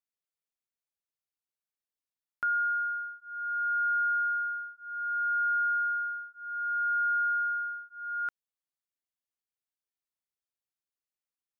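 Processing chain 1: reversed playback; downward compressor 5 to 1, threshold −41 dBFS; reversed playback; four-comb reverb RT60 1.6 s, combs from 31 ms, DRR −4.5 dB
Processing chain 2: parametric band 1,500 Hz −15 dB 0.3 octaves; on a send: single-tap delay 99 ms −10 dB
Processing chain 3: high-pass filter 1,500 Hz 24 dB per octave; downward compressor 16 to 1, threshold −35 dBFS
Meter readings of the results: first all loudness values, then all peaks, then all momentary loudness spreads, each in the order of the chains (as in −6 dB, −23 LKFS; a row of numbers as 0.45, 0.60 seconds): −33.5, −43.0, −37.5 LKFS; −25.0, −26.5, −28.5 dBFS; 5, 11, 7 LU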